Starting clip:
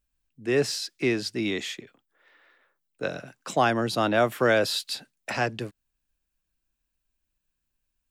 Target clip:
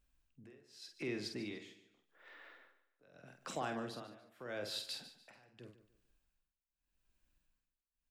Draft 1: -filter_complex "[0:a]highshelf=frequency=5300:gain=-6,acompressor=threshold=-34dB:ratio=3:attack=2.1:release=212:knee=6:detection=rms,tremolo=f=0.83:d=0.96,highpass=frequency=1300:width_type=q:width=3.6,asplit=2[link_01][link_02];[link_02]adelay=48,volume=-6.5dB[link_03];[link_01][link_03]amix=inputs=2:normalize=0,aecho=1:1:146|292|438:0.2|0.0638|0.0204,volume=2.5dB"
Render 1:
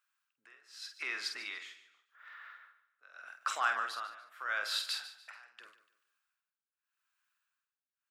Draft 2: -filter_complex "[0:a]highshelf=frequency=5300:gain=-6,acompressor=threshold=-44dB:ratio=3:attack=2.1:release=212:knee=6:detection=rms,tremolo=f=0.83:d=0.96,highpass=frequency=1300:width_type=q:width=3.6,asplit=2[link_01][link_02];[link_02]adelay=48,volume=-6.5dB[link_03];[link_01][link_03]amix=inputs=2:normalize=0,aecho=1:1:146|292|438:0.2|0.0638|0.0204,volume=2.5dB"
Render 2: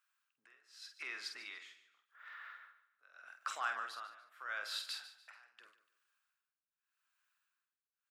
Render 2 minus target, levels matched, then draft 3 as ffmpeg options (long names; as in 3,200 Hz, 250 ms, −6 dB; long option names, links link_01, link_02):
1,000 Hz band +3.5 dB
-filter_complex "[0:a]highshelf=frequency=5300:gain=-6,acompressor=threshold=-44dB:ratio=3:attack=2.1:release=212:knee=6:detection=rms,tremolo=f=0.83:d=0.96,asplit=2[link_01][link_02];[link_02]adelay=48,volume=-6.5dB[link_03];[link_01][link_03]amix=inputs=2:normalize=0,aecho=1:1:146|292|438:0.2|0.0638|0.0204,volume=2.5dB"